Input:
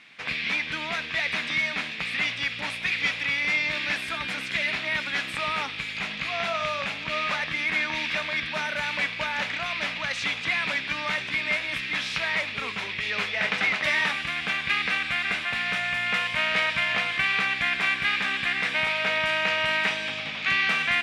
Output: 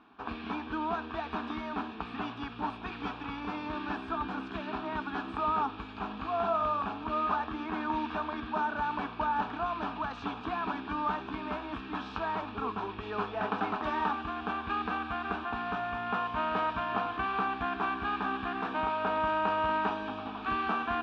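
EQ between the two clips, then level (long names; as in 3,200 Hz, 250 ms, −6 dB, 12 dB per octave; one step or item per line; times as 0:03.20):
low-pass filter 1,100 Hz 12 dB per octave
phaser with its sweep stopped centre 550 Hz, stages 6
+7.0 dB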